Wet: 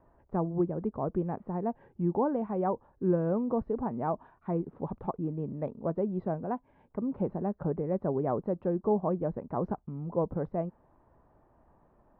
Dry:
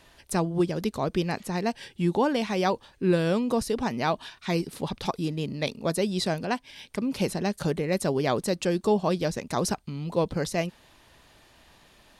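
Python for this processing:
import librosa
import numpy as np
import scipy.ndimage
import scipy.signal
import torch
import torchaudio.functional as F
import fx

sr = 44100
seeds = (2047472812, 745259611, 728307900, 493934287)

y = scipy.signal.sosfilt(scipy.signal.butter(4, 1100.0, 'lowpass', fs=sr, output='sos'), x)
y = y * 10.0 ** (-4.0 / 20.0)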